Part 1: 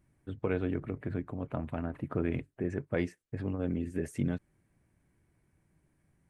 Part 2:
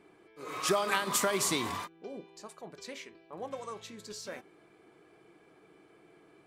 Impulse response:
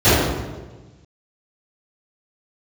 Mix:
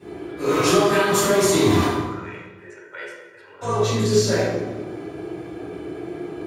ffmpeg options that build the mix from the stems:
-filter_complex "[0:a]highpass=f=1300:t=q:w=1.5,aecho=1:1:2.1:0.75,volume=0.668,asplit=2[s0][s1];[s1]volume=0.0891[s2];[1:a]acompressor=threshold=0.0126:ratio=8,volume=0.944,asplit=3[s3][s4][s5];[s3]atrim=end=2.01,asetpts=PTS-STARTPTS,afade=t=out:st=2.006:d=0.004:c=hsin[s6];[s4]atrim=start=2.01:end=3.61,asetpts=PTS-STARTPTS,volume=0[s7];[s5]atrim=start=3.61,asetpts=PTS-STARTPTS,afade=t=in:d=0.004:c=hsin[s8];[s6][s7][s8]concat=n=3:v=0:a=1,asplit=2[s9][s10];[s10]volume=0.473[s11];[2:a]atrim=start_sample=2205[s12];[s2][s11]amix=inputs=2:normalize=0[s13];[s13][s12]afir=irnorm=-1:irlink=0[s14];[s0][s9][s14]amix=inputs=3:normalize=0,highshelf=f=4100:g=8.5,aeval=exprs='clip(val(0),-1,0.355)':c=same"

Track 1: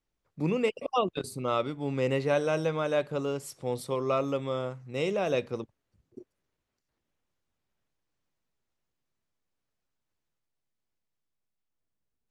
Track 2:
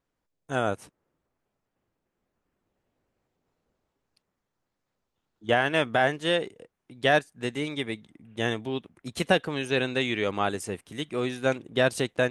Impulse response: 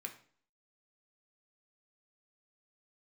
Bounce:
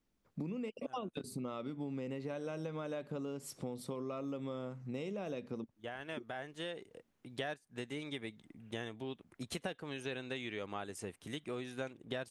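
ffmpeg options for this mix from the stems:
-filter_complex "[0:a]equalizer=f=230:w=1.6:g=10.5,acompressor=threshold=0.0501:ratio=6,volume=1.12,asplit=2[s0][s1];[1:a]adelay=350,volume=0.668[s2];[s1]apad=whole_len=558305[s3];[s2][s3]sidechaincompress=threshold=0.00708:ratio=10:attack=12:release=1120[s4];[s0][s4]amix=inputs=2:normalize=0,acompressor=threshold=0.01:ratio=4"

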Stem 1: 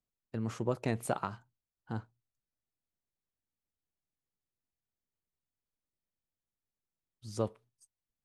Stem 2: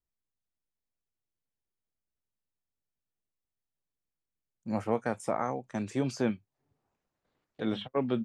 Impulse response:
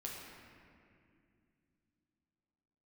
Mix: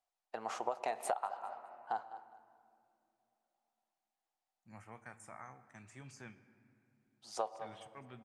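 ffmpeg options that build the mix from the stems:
-filter_complex "[0:a]highpass=f=750:t=q:w=5.7,highshelf=f=7200:g=8.5,adynamicsmooth=sensitivity=2:basefreq=7200,volume=1,asplit=3[s0][s1][s2];[s1]volume=0.266[s3];[s2]volume=0.158[s4];[1:a]equalizer=f=250:t=o:w=1:g=-9,equalizer=f=500:t=o:w=1:g=-12,equalizer=f=2000:t=o:w=1:g=7,equalizer=f=4000:t=o:w=1:g=-7,equalizer=f=8000:t=o:w=1:g=7,volume=0.133,asplit=2[s5][s6];[s6]volume=0.398[s7];[2:a]atrim=start_sample=2205[s8];[s3][s7]amix=inputs=2:normalize=0[s9];[s9][s8]afir=irnorm=-1:irlink=0[s10];[s4]aecho=0:1:204|408|612|816:1|0.23|0.0529|0.0122[s11];[s0][s5][s10][s11]amix=inputs=4:normalize=0,acompressor=threshold=0.0251:ratio=10"

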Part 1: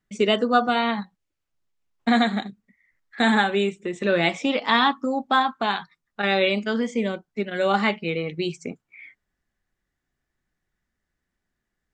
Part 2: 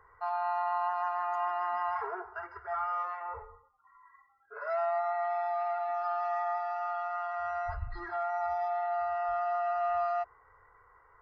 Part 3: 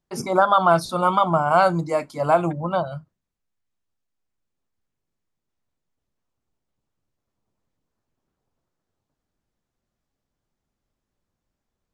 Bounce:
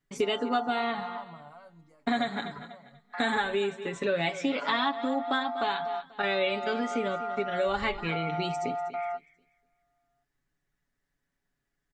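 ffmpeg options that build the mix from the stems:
-filter_complex "[0:a]volume=0.708,asplit=3[s0][s1][s2];[s1]volume=0.141[s3];[1:a]dynaudnorm=f=280:g=21:m=3.76,acompressor=threshold=0.0501:ratio=6,volume=0.447[s4];[2:a]acompressor=threshold=0.0562:ratio=5,alimiter=limit=0.1:level=0:latency=1:release=197,aeval=exprs='val(0)*pow(10,-20*if(lt(mod(0.92*n/s,1),2*abs(0.92)/1000),1-mod(0.92*n/s,1)/(2*abs(0.92)/1000),(mod(0.92*n/s,1)-2*abs(0.92)/1000)/(1-2*abs(0.92)/1000))/20)':c=same,volume=0.2[s5];[s2]apad=whole_len=494450[s6];[s4][s6]sidechaingate=range=0.00708:threshold=0.00178:ratio=16:detection=peak[s7];[s3]aecho=0:1:243|486|729|972:1|0.3|0.09|0.027[s8];[s0][s7][s5][s8]amix=inputs=4:normalize=0,aecho=1:1:7.1:0.63,acompressor=threshold=0.0447:ratio=2.5"

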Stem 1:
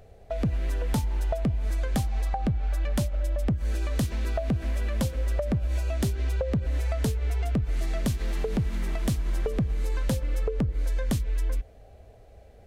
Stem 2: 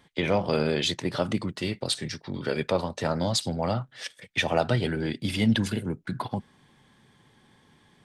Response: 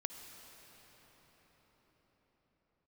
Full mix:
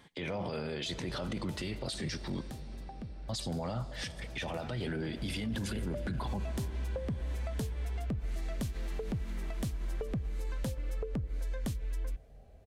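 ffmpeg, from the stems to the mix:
-filter_complex "[0:a]adelay=550,volume=0.335,afade=t=in:st=4.96:d=0.62:silence=0.354813,asplit=2[s0][s1];[s1]volume=0.126[s2];[1:a]alimiter=limit=0.1:level=0:latency=1:release=164,volume=0.891,asplit=3[s3][s4][s5];[s3]atrim=end=2.41,asetpts=PTS-STARTPTS,afade=t=out:st=2.406:d=0.004:c=hsin[s6];[s4]atrim=start=2.41:end=3.29,asetpts=PTS-STARTPTS,volume=0[s7];[s5]atrim=start=3.29,asetpts=PTS-STARTPTS,afade=t=in:d=0.004:c=hsin[s8];[s6][s7][s8]concat=n=3:v=0:a=1,asplit=2[s9][s10];[s10]volume=0.355[s11];[2:a]atrim=start_sample=2205[s12];[s2][s11]amix=inputs=2:normalize=0[s13];[s13][s12]afir=irnorm=-1:irlink=0[s14];[s0][s9][s14]amix=inputs=3:normalize=0,alimiter=level_in=1.68:limit=0.0631:level=0:latency=1:release=12,volume=0.596"

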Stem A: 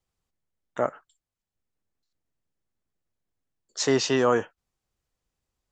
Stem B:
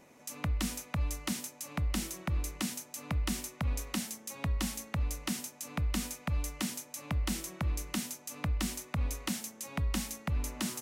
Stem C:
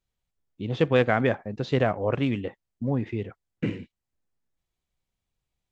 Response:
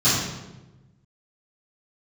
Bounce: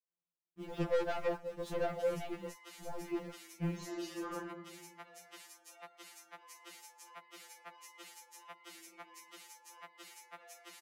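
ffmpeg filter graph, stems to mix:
-filter_complex "[0:a]highpass=230,tremolo=f=58:d=0.919,volume=0.237,asplit=2[s0][s1];[s1]volume=0.141[s2];[1:a]highpass=f=430:w=0.5412,highpass=f=430:w=1.3066,alimiter=level_in=2.24:limit=0.0631:level=0:latency=1:release=420,volume=0.447,adelay=1400,volume=1.33[s3];[2:a]acrusher=bits=8:dc=4:mix=0:aa=0.000001,volume=0.708[s4];[3:a]atrim=start_sample=2205[s5];[s2][s5]afir=irnorm=-1:irlink=0[s6];[s0][s3][s4][s6]amix=inputs=4:normalize=0,highshelf=f=2800:g=-11.5,asoftclip=type=tanh:threshold=0.0398,afftfilt=real='re*2.83*eq(mod(b,8),0)':imag='im*2.83*eq(mod(b,8),0)':win_size=2048:overlap=0.75"

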